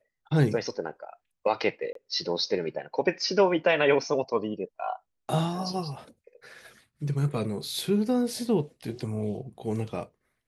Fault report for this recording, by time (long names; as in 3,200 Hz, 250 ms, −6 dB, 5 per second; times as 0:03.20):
0:01.93–0:01.95: drop-out 23 ms